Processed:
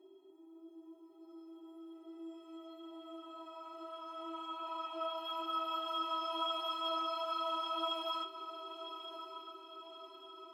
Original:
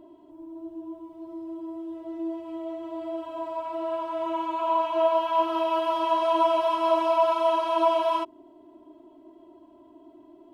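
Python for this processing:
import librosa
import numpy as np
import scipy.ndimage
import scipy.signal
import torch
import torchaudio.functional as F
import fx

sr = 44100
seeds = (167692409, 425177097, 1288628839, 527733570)

y = scipy.signal.sosfilt(scipy.signal.butter(2, 270.0, 'highpass', fs=sr, output='sos'), x)
y = fx.stiff_resonator(y, sr, f0_hz=380.0, decay_s=0.26, stiffness=0.03)
y = fx.echo_diffused(y, sr, ms=1119, feedback_pct=53, wet_db=-10.0)
y = F.gain(torch.from_numpy(y), 8.0).numpy()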